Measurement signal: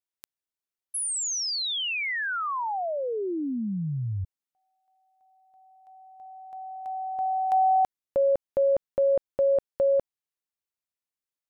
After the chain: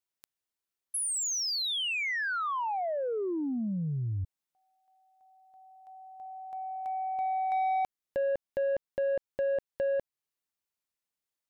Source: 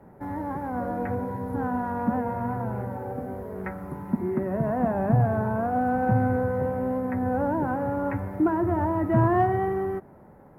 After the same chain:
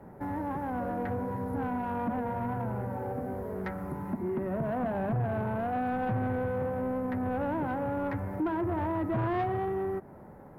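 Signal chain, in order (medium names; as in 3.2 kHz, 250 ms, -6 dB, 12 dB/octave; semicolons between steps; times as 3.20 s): compression 1.5:1, threshold -35 dBFS; saturation -26.5 dBFS; trim +1.5 dB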